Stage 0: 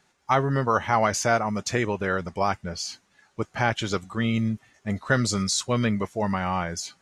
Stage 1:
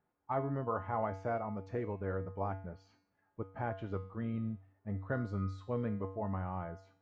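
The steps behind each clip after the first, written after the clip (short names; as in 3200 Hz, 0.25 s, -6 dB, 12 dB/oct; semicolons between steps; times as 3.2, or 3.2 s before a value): LPF 1000 Hz 12 dB/oct; resonator 96 Hz, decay 0.53 s, harmonics odd, mix 80%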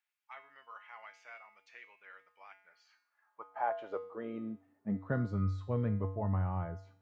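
high-pass sweep 2500 Hz -> 95 Hz, 2.53–5.59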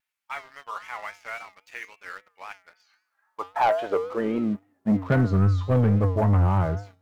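vibrato 3.7 Hz 89 cents; sample leveller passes 2; gain +8 dB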